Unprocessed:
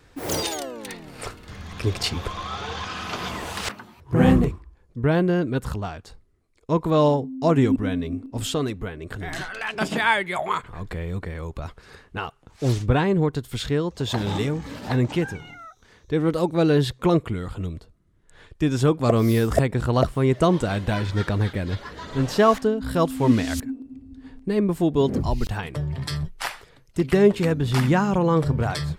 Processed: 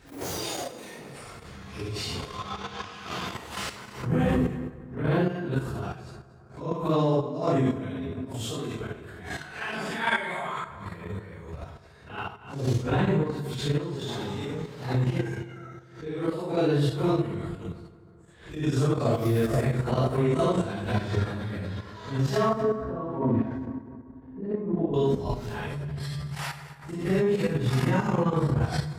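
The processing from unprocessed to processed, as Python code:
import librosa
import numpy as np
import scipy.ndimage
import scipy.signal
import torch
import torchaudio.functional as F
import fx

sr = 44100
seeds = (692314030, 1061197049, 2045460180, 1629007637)

y = fx.phase_scramble(x, sr, seeds[0], window_ms=200)
y = fx.lowpass(y, sr, hz=1000.0, slope=12, at=(22.49, 24.94))
y = fx.rev_fdn(y, sr, rt60_s=2.2, lf_ratio=0.9, hf_ratio=0.5, size_ms=43.0, drr_db=6.5)
y = 10.0 ** (-5.0 / 20.0) * np.tanh(y / 10.0 ** (-5.0 / 20.0))
y = fx.level_steps(y, sr, step_db=10)
y = scipy.signal.sosfilt(scipy.signal.butter(2, 54.0, 'highpass', fs=sr, output='sos'), y)
y = y + 10.0 ** (-20.0 / 20.0) * np.pad(y, (int(232 * sr / 1000.0), 0))[:len(y)]
y = fx.pre_swell(y, sr, db_per_s=110.0)
y = y * librosa.db_to_amplitude(-2.5)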